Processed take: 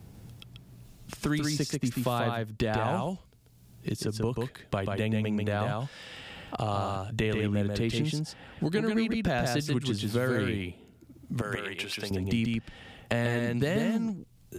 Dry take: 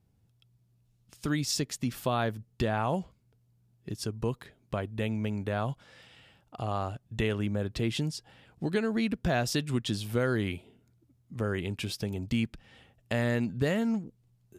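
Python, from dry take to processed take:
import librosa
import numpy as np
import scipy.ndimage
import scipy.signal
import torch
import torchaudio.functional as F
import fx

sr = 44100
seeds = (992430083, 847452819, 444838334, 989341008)

y = fx.highpass(x, sr, hz=1300.0, slope=6, at=(11.41, 12.11))
y = y + 10.0 ** (-3.5 / 20.0) * np.pad(y, (int(137 * sr / 1000.0), 0))[:len(y)]
y = fx.band_squash(y, sr, depth_pct=70)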